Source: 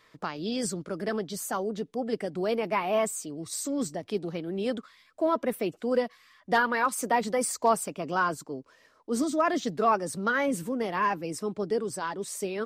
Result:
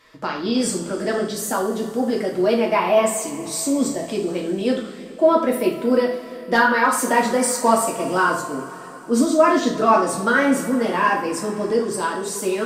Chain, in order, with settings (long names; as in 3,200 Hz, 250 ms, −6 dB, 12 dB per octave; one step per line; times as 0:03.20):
coupled-rooms reverb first 0.47 s, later 4.1 s, from −19 dB, DRR −2.5 dB
level +5 dB
MP3 112 kbit/s 48,000 Hz